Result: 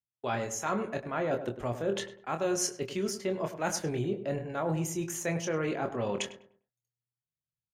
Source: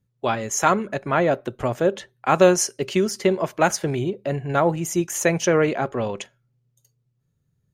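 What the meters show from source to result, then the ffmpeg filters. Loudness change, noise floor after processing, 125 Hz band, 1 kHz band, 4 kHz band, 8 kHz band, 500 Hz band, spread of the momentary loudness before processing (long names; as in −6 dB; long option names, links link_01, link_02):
−11.0 dB, below −85 dBFS, −9.0 dB, −12.5 dB, −7.5 dB, −9.0 dB, −11.5 dB, 10 LU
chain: -filter_complex "[0:a]agate=range=-33dB:threshold=-39dB:ratio=3:detection=peak,areverse,acompressor=threshold=-33dB:ratio=5,areverse,asplit=2[link_01][link_02];[link_02]adelay=25,volume=-7dB[link_03];[link_01][link_03]amix=inputs=2:normalize=0,asplit=2[link_04][link_05];[link_05]adelay=101,lowpass=frequency=1600:poles=1,volume=-10.5dB,asplit=2[link_06][link_07];[link_07]adelay=101,lowpass=frequency=1600:poles=1,volume=0.36,asplit=2[link_08][link_09];[link_09]adelay=101,lowpass=frequency=1600:poles=1,volume=0.36,asplit=2[link_10][link_11];[link_11]adelay=101,lowpass=frequency=1600:poles=1,volume=0.36[link_12];[link_04][link_06][link_08][link_10][link_12]amix=inputs=5:normalize=0,volume=2dB"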